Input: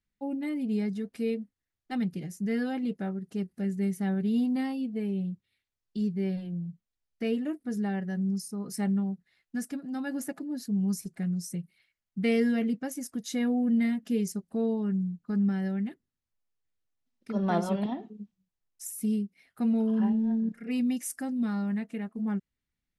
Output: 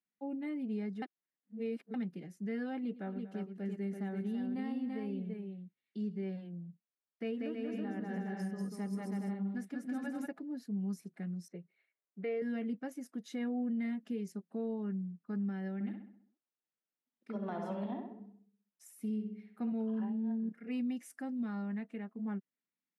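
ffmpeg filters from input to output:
ffmpeg -i in.wav -filter_complex "[0:a]asettb=1/sr,asplit=3[link_01][link_02][link_03];[link_01]atrim=end=2.824[link_04];[link_02]atrim=start=2.82:end=6.23,asetpts=PTS-STARTPTS,afade=type=in:duration=0.004:curve=qsin,afade=type=out:start_time=3.406:duration=0.004:curve=qsin,aecho=1:1:109|239|335:0.158|0.15|0.562,atrim=end_sample=150381[link_05];[link_03]atrim=start=6.226[link_06];[link_04][link_05]acrossfade=duration=0.004:curve1=hsin:curve2=qsin[link_07];[link_07][link_06]acrossfade=duration=0.004:curve1=qsin:curve2=hsin,asplit=3[link_08][link_09][link_10];[link_08]afade=type=out:start_time=7.27:duration=0.02[link_11];[link_09]aecho=1:1:190|323|416.1|481.3|526.9:0.794|0.631|0.501|0.398|0.316,afade=type=in:start_time=7.27:duration=0.02,afade=type=out:start_time=10.25:duration=0.02[link_12];[link_10]afade=type=in:start_time=10.25:duration=0.02[link_13];[link_11][link_12][link_13]amix=inputs=3:normalize=0,asettb=1/sr,asplit=3[link_14][link_15][link_16];[link_14]atrim=end=11.484[link_17];[link_15]atrim=start=11.48:end=12.42,asetpts=PTS-STARTPTS,afade=type=in:duration=0.004:curve=qsin,afade=type=out:start_time=0.936:duration=0.004:curve=qsin,highpass=180,equalizer=frequency=240:width_type=q:width=4:gain=-9,equalizer=frequency=420:width_type=q:width=4:gain=8,equalizer=frequency=610:width_type=q:width=4:gain=6,equalizer=frequency=3200:width_type=q:width=4:gain=-8,lowpass=frequency=3900:width=0.5412,lowpass=frequency=3900:width=1.3066[link_18];[link_16]atrim=start=12.416[link_19];[link_17][link_18]acrossfade=duration=0.004:curve1=hsin:curve2=qsin[link_20];[link_20][link_19]acrossfade=duration=0.004:curve1=qsin:curve2=hsin,asettb=1/sr,asplit=3[link_21][link_22][link_23];[link_21]atrim=end=15.744[link_24];[link_22]atrim=start=15.74:end=19.72,asetpts=PTS-STARTPTS,afade=type=in:duration=0.004:curve=qsin,afade=type=out:start_time=3.976:duration=0.004:curve=qsin,asplit=2[link_25][link_26];[link_26]adelay=65,lowpass=frequency=2800:poles=1,volume=-5dB,asplit=2[link_27][link_28];[link_28]adelay=65,lowpass=frequency=2800:poles=1,volume=0.52,asplit=2[link_29][link_30];[link_30]adelay=65,lowpass=frequency=2800:poles=1,volume=0.52,asplit=2[link_31][link_32];[link_32]adelay=65,lowpass=frequency=2800:poles=1,volume=0.52,asplit=2[link_33][link_34];[link_34]adelay=65,lowpass=frequency=2800:poles=1,volume=0.52,asplit=2[link_35][link_36];[link_36]adelay=65,lowpass=frequency=2800:poles=1,volume=0.52,asplit=2[link_37][link_38];[link_38]adelay=65,lowpass=frequency=2800:poles=1,volume=0.52[link_39];[link_25][link_27][link_29][link_31][link_33][link_35][link_37][link_39]amix=inputs=8:normalize=0,atrim=end_sample=175518[link_40];[link_23]atrim=start=19.716[link_41];[link_24][link_40]acrossfade=duration=0.004:curve1=hsin:curve2=qsin[link_42];[link_42][link_41]acrossfade=duration=0.004:curve1=qsin:curve2=hsin,asplit=3[link_43][link_44][link_45];[link_43]atrim=end=1.022[link_46];[link_44]atrim=start=1.018:end=1.942,asetpts=PTS-STARTPTS,areverse[link_47];[link_45]atrim=start=1.938[link_48];[link_46][link_47]acrossfade=duration=0.004:curve1=hsin:curve2=hsin[link_49];[link_49][link_48]acrossfade=duration=0.004:curve1=hsin:curve2=hsin,highpass=frequency=180:width=0.5412,highpass=frequency=180:width=1.3066,bass=frequency=250:gain=-1,treble=frequency=4000:gain=-13,alimiter=limit=-24dB:level=0:latency=1:release=159,volume=-6dB" out.wav

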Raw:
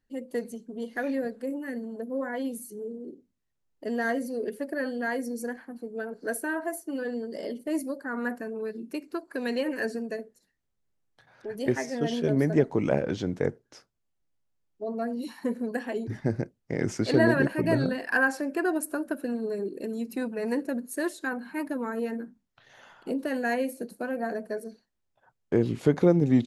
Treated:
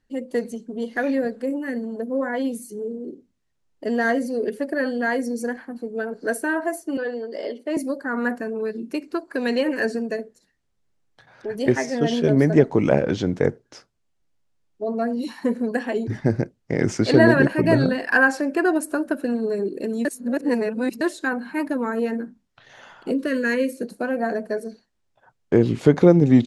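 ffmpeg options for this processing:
ffmpeg -i in.wav -filter_complex "[0:a]asettb=1/sr,asplit=3[link_01][link_02][link_03];[link_01]atrim=end=6.974[link_04];[link_02]atrim=start=6.97:end=7.77,asetpts=PTS-STARTPTS,afade=type=in:duration=0.004:curve=qsin,afade=type=out:start_time=0.796:duration=0.004:curve=qsin,acrossover=split=300 5200:gain=0.112 1 0.224[link_05][link_06][link_07];[link_05][link_06][link_07]amix=inputs=3:normalize=0[link_08];[link_03]atrim=start=7.766[link_09];[link_04][link_08]acrossfade=duration=0.004:curve1=hsin:curve2=qsin[link_10];[link_10][link_09]acrossfade=duration=0.004:curve1=qsin:curve2=hsin,asettb=1/sr,asplit=3[link_11][link_12][link_13];[link_11]atrim=end=23.114[link_14];[link_12]atrim=start=23.11:end=23.83,asetpts=PTS-STARTPTS,afade=type=in:duration=0.004:curve=qsin,afade=type=out:start_time=0.716:duration=0.004:curve=qsin,asuperstop=centerf=780:order=4:qfactor=1.9[link_15];[link_13]atrim=start=23.826[link_16];[link_14][link_15]acrossfade=duration=0.004:curve1=hsin:curve2=qsin[link_17];[link_17][link_16]acrossfade=duration=0.004:curve1=qsin:curve2=hsin,asplit=3[link_18][link_19][link_20];[link_18]atrim=end=20.052[link_21];[link_19]atrim=start=20.048:end=21.012,asetpts=PTS-STARTPTS,areverse[link_22];[link_20]atrim=start=21.008[link_23];[link_21][link_22]acrossfade=duration=0.004:curve1=hsin:curve2=hsin[link_24];[link_24][link_23]acrossfade=duration=0.004:curve1=hsin:curve2=hsin,lowpass=8800,volume=7dB" out.wav

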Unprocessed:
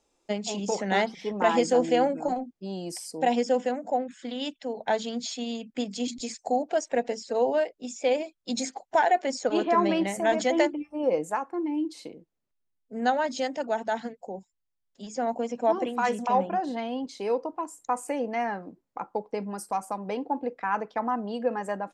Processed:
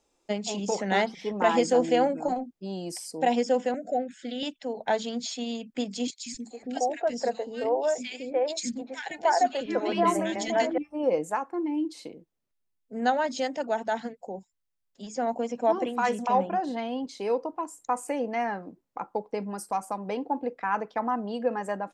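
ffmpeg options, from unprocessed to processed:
ffmpeg -i in.wav -filter_complex "[0:a]asettb=1/sr,asplit=3[link_01][link_02][link_03];[link_01]atrim=end=3.744[link_04];[link_02]atrim=start=3.74:end=4.43,asetpts=PTS-STARTPTS,afade=type=in:duration=0.004:curve=qsin,afade=type=out:start_time=0.686:duration=0.004:curve=qsin,asuperstop=centerf=1000:order=20:qfactor=1.8[link_05];[link_03]atrim=start=4.426[link_06];[link_04][link_05]acrossfade=duration=0.004:curve1=hsin:curve2=qsin[link_07];[link_07][link_06]acrossfade=duration=0.004:curve1=qsin:curve2=hsin,asettb=1/sr,asplit=3[link_08][link_09][link_10];[link_08]atrim=end=6.104[link_11];[link_09]atrim=start=6.1:end=10.78,asetpts=PTS-STARTPTS,afade=type=in:duration=0.004:curve=qsin,afade=type=out:start_time=4.676:duration=0.004:curve=qsin,acrossover=split=340|1800[link_12][link_13][link_14];[link_12]adelay=160[link_15];[link_13]adelay=300[link_16];[link_15][link_16][link_14]amix=inputs=3:normalize=0,atrim=end_sample=206388[link_17];[link_10]atrim=start=10.776[link_18];[link_11][link_17]acrossfade=duration=0.004:curve1=hsin:curve2=qsin[link_19];[link_19][link_18]acrossfade=duration=0.004:curve1=qsin:curve2=hsin" out.wav

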